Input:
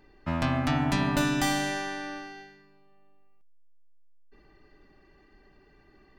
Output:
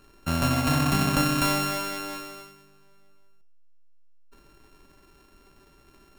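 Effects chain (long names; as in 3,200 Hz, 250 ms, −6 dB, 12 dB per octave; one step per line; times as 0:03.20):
samples sorted by size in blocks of 32 samples
reverb whose tail is shaped and stops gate 200 ms falling, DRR 12 dB
level +2.5 dB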